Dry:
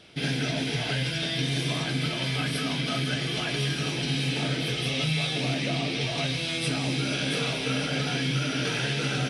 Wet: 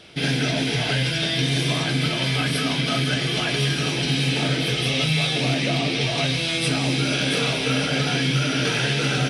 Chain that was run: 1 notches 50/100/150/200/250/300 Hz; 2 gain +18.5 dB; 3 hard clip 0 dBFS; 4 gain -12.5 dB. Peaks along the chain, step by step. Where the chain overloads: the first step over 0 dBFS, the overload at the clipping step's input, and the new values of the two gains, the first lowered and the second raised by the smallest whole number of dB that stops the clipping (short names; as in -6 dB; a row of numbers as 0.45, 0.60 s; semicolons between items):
-14.5, +4.0, 0.0, -12.5 dBFS; step 2, 4.0 dB; step 2 +14.5 dB, step 4 -8.5 dB